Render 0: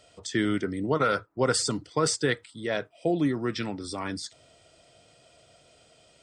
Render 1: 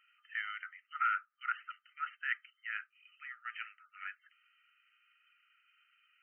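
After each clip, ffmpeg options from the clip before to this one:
ffmpeg -i in.wav -af "afftfilt=real='re*between(b*sr/4096,1200,3100)':imag='im*between(b*sr/4096,1200,3100)':win_size=4096:overlap=0.75,volume=-4dB" out.wav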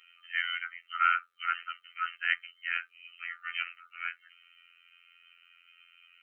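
ffmpeg -i in.wav -af "afftfilt=real='hypot(re,im)*cos(PI*b)':imag='0':win_size=2048:overlap=0.75,superequalizer=7b=3.16:12b=2:13b=2.82,volume=9dB" out.wav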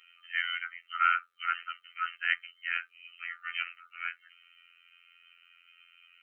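ffmpeg -i in.wav -af anull out.wav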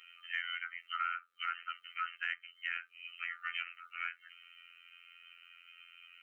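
ffmpeg -i in.wav -af "acompressor=threshold=-38dB:ratio=4,volume=2.5dB" out.wav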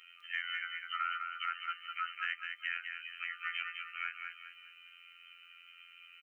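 ffmpeg -i in.wav -af "aecho=1:1:204|408|612|816:0.531|0.196|0.0727|0.0269" out.wav

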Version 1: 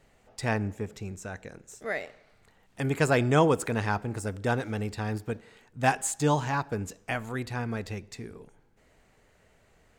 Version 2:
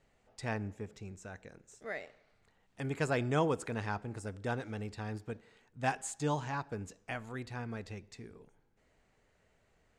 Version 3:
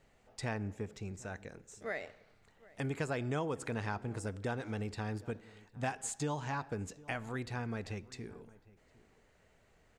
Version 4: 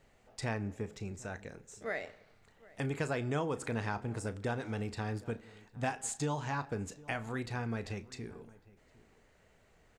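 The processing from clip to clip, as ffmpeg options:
ffmpeg -i in.wav -af "lowpass=8800,volume=-8.5dB" out.wav
ffmpeg -i in.wav -filter_complex "[0:a]acompressor=threshold=-37dB:ratio=4,asplit=2[link_01][link_02];[link_02]adelay=758,volume=-21dB,highshelf=frequency=4000:gain=-17.1[link_03];[link_01][link_03]amix=inputs=2:normalize=0,volume=3.5dB" out.wav
ffmpeg -i in.wav -filter_complex "[0:a]asplit=2[link_01][link_02];[link_02]adelay=35,volume=-13.5dB[link_03];[link_01][link_03]amix=inputs=2:normalize=0,volume=1.5dB" out.wav

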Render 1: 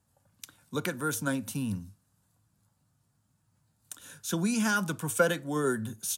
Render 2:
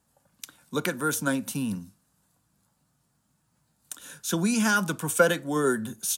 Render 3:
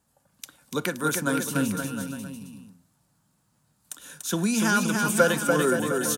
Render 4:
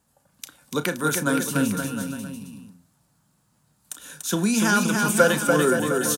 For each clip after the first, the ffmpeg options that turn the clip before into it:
ffmpeg -i in.wav -af "equalizer=frequency=96:width_type=o:width=0.66:gain=-13,volume=4.5dB" out.wav
ffmpeg -i in.wav -af "aecho=1:1:290|522|707.6|856.1|974.9:0.631|0.398|0.251|0.158|0.1" out.wav
ffmpeg -i in.wav -filter_complex "[0:a]asplit=2[link_01][link_02];[link_02]adelay=34,volume=-13dB[link_03];[link_01][link_03]amix=inputs=2:normalize=0,volume=2.5dB" out.wav

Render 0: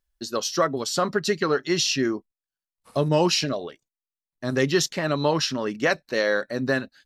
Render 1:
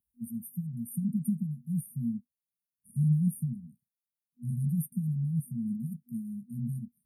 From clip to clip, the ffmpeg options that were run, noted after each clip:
ffmpeg -i in.wav -af "highpass=120,afftfilt=real='re*(1-between(b*sr/4096,240,8800))':imag='im*(1-between(b*sr/4096,240,8800))':win_size=4096:overlap=0.75,volume=3dB" out.wav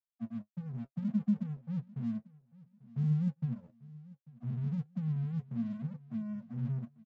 ffmpeg -i in.wav -af "aresample=16000,aeval=exprs='sgn(val(0))*max(abs(val(0))-0.00316,0)':channel_layout=same,aresample=44100,aecho=1:1:843|1686:0.0891|0.0267,flanger=delay=7.3:depth=2.3:regen=47:speed=1.2:shape=sinusoidal,volume=2dB" out.wav

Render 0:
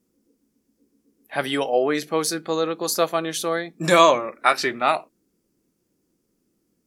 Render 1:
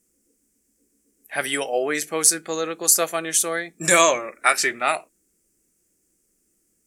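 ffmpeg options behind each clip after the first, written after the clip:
ffmpeg -i in.wav -af "equalizer=frequency=125:width_type=o:width=1:gain=-10,equalizer=frequency=250:width_type=o:width=1:gain=-8,equalizer=frequency=500:width_type=o:width=1:gain=-4,equalizer=frequency=1000:width_type=o:width=1:gain=-9,equalizer=frequency=2000:width_type=o:width=1:gain=3,equalizer=frequency=4000:width_type=o:width=1:gain=-10,equalizer=frequency=8000:width_type=o:width=1:gain=12,volume=4.5dB" out.wav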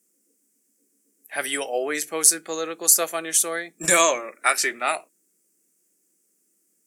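ffmpeg -i in.wav -filter_complex "[0:a]acrossover=split=160|1200[link_01][link_02][link_03];[link_01]acrusher=bits=5:mix=0:aa=0.000001[link_04];[link_03]crystalizer=i=0.5:c=0[link_05];[link_04][link_02][link_05]amix=inputs=3:normalize=0,volume=-2.5dB" out.wav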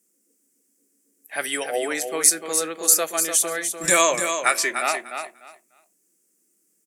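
ffmpeg -i in.wav -af "aecho=1:1:297|594|891:0.422|0.0801|0.0152" out.wav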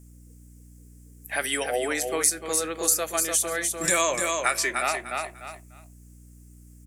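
ffmpeg -i in.wav -af "acompressor=threshold=-35dB:ratio=2,aeval=exprs='val(0)+0.002*(sin(2*PI*60*n/s)+sin(2*PI*2*60*n/s)/2+sin(2*PI*3*60*n/s)/3+sin(2*PI*4*60*n/s)/4+sin(2*PI*5*60*n/s)/5)':channel_layout=same,volume=6dB" out.wav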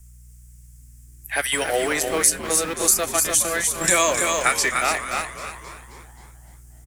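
ffmpeg -i in.wav -filter_complex "[0:a]acrossover=split=140|810|6000[link_01][link_02][link_03][link_04];[link_02]aeval=exprs='val(0)*gte(abs(val(0)),0.0237)':channel_layout=same[link_05];[link_01][link_05][link_03][link_04]amix=inputs=4:normalize=0,asplit=7[link_06][link_07][link_08][link_09][link_10][link_11][link_12];[link_07]adelay=265,afreqshift=-100,volume=-12dB[link_13];[link_08]adelay=530,afreqshift=-200,volume=-17.2dB[link_14];[link_09]adelay=795,afreqshift=-300,volume=-22.4dB[link_15];[link_10]adelay=1060,afreqshift=-400,volume=-27.6dB[link_16];[link_11]adelay=1325,afreqshift=-500,volume=-32.8dB[link_17];[link_12]adelay=1590,afreqshift=-600,volume=-38dB[link_18];[link_06][link_13][link_14][link_15][link_16][link_17][link_18]amix=inputs=7:normalize=0,volume=4.5dB" out.wav

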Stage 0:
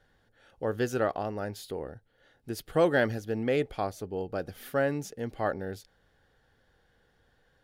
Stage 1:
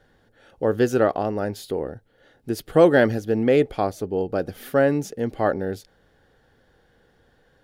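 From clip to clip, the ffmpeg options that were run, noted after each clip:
ffmpeg -i in.wav -af "equalizer=frequency=320:width=0.56:gain=5.5,volume=5dB" out.wav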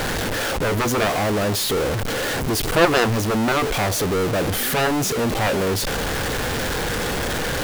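ffmpeg -i in.wav -af "aeval=exprs='val(0)+0.5*0.1*sgn(val(0))':channel_layout=same,aeval=exprs='0.708*(cos(1*acos(clip(val(0)/0.708,-1,1)))-cos(1*PI/2))+0.224*(cos(3*acos(clip(val(0)/0.708,-1,1)))-cos(3*PI/2))+0.141*(cos(7*acos(clip(val(0)/0.708,-1,1)))-cos(7*PI/2))':channel_layout=same" out.wav

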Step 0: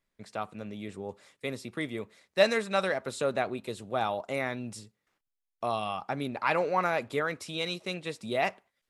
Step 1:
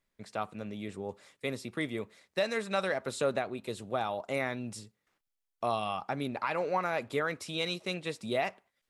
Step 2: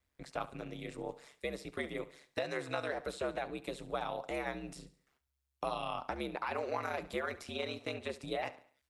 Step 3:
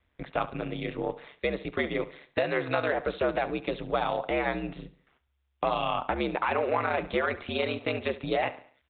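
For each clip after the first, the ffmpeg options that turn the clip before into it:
ffmpeg -i in.wav -af "alimiter=limit=-19dB:level=0:latency=1:release=339" out.wav
ffmpeg -i in.wav -filter_complex "[0:a]aeval=exprs='val(0)*sin(2*PI*68*n/s)':channel_layout=same,acrossover=split=370|1600|3300[link_01][link_02][link_03][link_04];[link_01]acompressor=threshold=-48dB:ratio=4[link_05];[link_02]acompressor=threshold=-38dB:ratio=4[link_06];[link_03]acompressor=threshold=-48dB:ratio=4[link_07];[link_04]acompressor=threshold=-56dB:ratio=4[link_08];[link_05][link_06][link_07][link_08]amix=inputs=4:normalize=0,aecho=1:1:70|140|210|280:0.141|0.0593|0.0249|0.0105,volume=2.5dB" out.wav
ffmpeg -i in.wav -filter_complex "[0:a]asplit=2[link_01][link_02];[link_02]asoftclip=type=hard:threshold=-32.5dB,volume=-7dB[link_03];[link_01][link_03]amix=inputs=2:normalize=0,aresample=8000,aresample=44100,volume=7dB" out.wav

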